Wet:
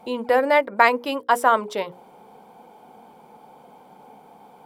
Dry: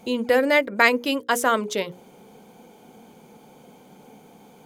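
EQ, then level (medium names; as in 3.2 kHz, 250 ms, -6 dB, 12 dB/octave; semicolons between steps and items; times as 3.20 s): peaking EQ 890 Hz +13.5 dB 1.4 oct; band-stop 6.5 kHz, Q 5.4; -6.0 dB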